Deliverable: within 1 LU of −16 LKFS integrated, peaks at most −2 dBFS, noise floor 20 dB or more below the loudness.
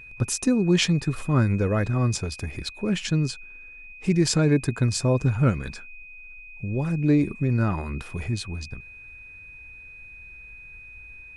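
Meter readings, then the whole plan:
interfering tone 2,500 Hz; level of the tone −42 dBFS; integrated loudness −24.5 LKFS; sample peak −9.0 dBFS; target loudness −16.0 LKFS
→ notch filter 2,500 Hz, Q 30
level +8.5 dB
brickwall limiter −2 dBFS

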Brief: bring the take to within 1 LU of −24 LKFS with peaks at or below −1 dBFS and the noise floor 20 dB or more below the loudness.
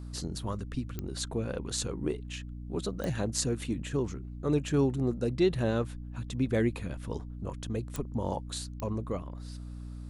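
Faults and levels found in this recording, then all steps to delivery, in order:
number of clicks 4; mains hum 60 Hz; hum harmonics up to 300 Hz; level of the hum −38 dBFS; integrated loudness −33.0 LKFS; sample peak −12.0 dBFS; target loudness −24.0 LKFS
→ click removal
hum removal 60 Hz, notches 5
level +9 dB

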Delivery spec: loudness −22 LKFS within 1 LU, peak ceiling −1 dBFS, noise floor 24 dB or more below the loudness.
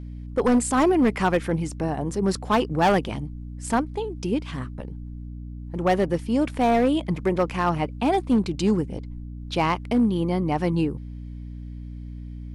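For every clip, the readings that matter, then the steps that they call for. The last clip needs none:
share of clipped samples 1.4%; peaks flattened at −14.0 dBFS; mains hum 60 Hz; hum harmonics up to 300 Hz; level of the hum −34 dBFS; integrated loudness −23.5 LKFS; sample peak −14.0 dBFS; target loudness −22.0 LKFS
→ clipped peaks rebuilt −14 dBFS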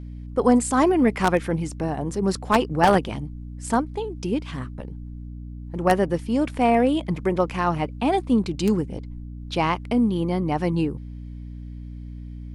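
share of clipped samples 0.0%; mains hum 60 Hz; hum harmonics up to 300 Hz; level of the hum −34 dBFS
→ mains-hum notches 60/120/180/240/300 Hz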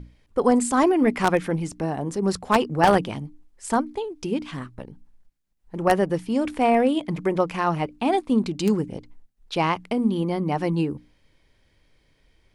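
mains hum none found; integrated loudness −23.5 LKFS; sample peak −4.5 dBFS; target loudness −22.0 LKFS
→ level +1.5 dB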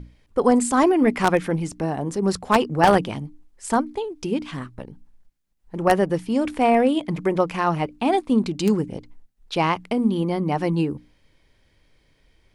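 integrated loudness −22.0 LKFS; sample peak −3.0 dBFS; background noise floor −63 dBFS

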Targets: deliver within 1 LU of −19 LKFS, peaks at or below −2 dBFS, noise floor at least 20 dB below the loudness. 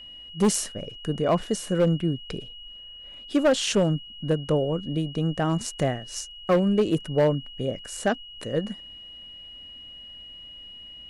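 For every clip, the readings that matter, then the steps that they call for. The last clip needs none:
share of clipped samples 0.7%; peaks flattened at −14.5 dBFS; interfering tone 2,900 Hz; level of the tone −41 dBFS; integrated loudness −25.5 LKFS; sample peak −14.5 dBFS; target loudness −19.0 LKFS
→ clipped peaks rebuilt −14.5 dBFS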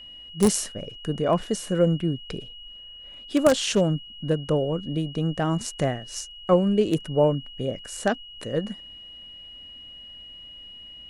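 share of clipped samples 0.0%; interfering tone 2,900 Hz; level of the tone −41 dBFS
→ notch filter 2,900 Hz, Q 30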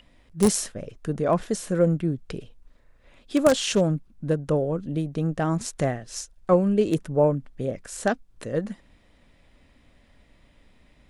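interfering tone none found; integrated loudness −25.0 LKFS; sample peak −5.5 dBFS; target loudness −19.0 LKFS
→ level +6 dB
brickwall limiter −2 dBFS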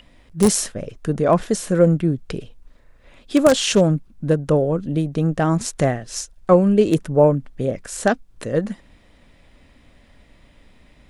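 integrated loudness −19.5 LKFS; sample peak −2.0 dBFS; background noise floor −53 dBFS

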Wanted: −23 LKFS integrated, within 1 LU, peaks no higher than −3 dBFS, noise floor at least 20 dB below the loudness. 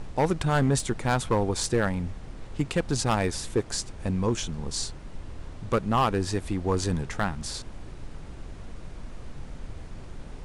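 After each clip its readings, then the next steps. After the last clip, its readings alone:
share of clipped samples 0.9%; peaks flattened at −16.5 dBFS; background noise floor −42 dBFS; target noise floor −48 dBFS; integrated loudness −27.5 LKFS; sample peak −16.5 dBFS; target loudness −23.0 LKFS
→ clipped peaks rebuilt −16.5 dBFS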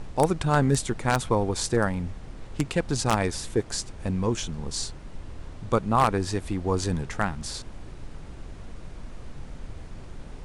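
share of clipped samples 0.0%; background noise floor −42 dBFS; target noise floor −47 dBFS
→ noise reduction from a noise print 6 dB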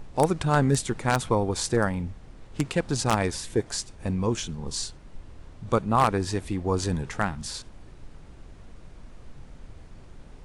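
background noise floor −48 dBFS; integrated loudness −26.5 LKFS; sample peak −7.5 dBFS; target loudness −23.0 LKFS
→ level +3.5 dB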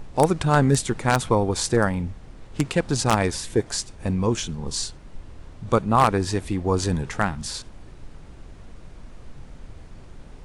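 integrated loudness −23.0 LKFS; sample peak −4.0 dBFS; background noise floor −44 dBFS

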